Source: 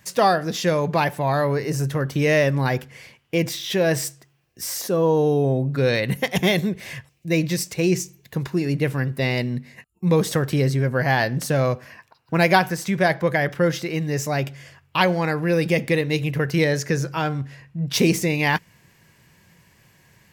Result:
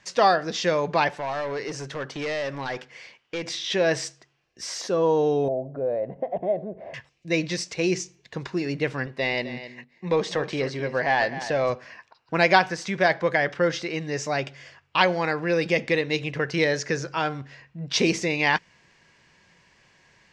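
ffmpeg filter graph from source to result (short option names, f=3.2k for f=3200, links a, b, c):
-filter_complex "[0:a]asettb=1/sr,asplit=3[a][b][c];[a]atrim=end=1.154[d];[b]atrim=start=1.15:end=3.49,asetpts=PTS-STARTPTS,afade=t=in:d=0.004:c=qsin,afade=t=out:st=2.336:d=0.004:c=qsin,lowshelf=f=190:g=-8.5,acompressor=threshold=-22dB:ratio=2.5:attack=3.2:release=140:knee=1:detection=peak,volume=23dB,asoftclip=hard,volume=-23dB[e];[c]atrim=start=3.486[f];[d][e]acrossfade=d=0.004:c1=hsin:c2=qsin[g];[g][f]acrossfade=d=0.004:c1=qsin:c2=hsin,asettb=1/sr,asplit=3[h][i][j];[h]atrim=end=5.484[k];[i]atrim=start=5.48:end=6.94,asetpts=PTS-STARTPTS,afade=t=in:d=0.004:c=qsin,afade=t=out:st=1.456:d=0.004:c=qsin,acompressor=threshold=-31dB:ratio=2.5:attack=3.2:release=140:knee=1:detection=peak,lowpass=f=650:t=q:w=6.5[l];[j]atrim=start=6.936[m];[k][l]acrossfade=d=0.004:c1=hsin:c2=qsin[n];[n][m]acrossfade=d=0.004:c1=qsin:c2=hsin,asettb=1/sr,asplit=3[o][p][q];[o]atrim=end=9.064[r];[p]atrim=start=9.06:end=11.7,asetpts=PTS-STARTPTS,afade=t=in:d=0.004:c=qsin,afade=t=out:st=2.636:d=0.004:c=qsin,equalizer=f=1.4k:t=o:w=0.42:g=-7,asplit=2[s][t];[t]highpass=f=720:p=1,volume=8dB,asoftclip=type=tanh:threshold=-8.5dB[u];[s][u]amix=inputs=2:normalize=0,lowpass=f=2.3k:p=1,volume=-6dB,aecho=1:1:259:0.237,atrim=end_sample=116424[v];[q]atrim=start=11.696[w];[r][v]acrossfade=d=0.004:c1=hsin:c2=qsin[x];[x][w]acrossfade=d=0.004:c1=qsin:c2=hsin,lowpass=f=6.3k:w=0.5412,lowpass=f=6.3k:w=1.3066,equalizer=f=110:w=0.56:g=-11"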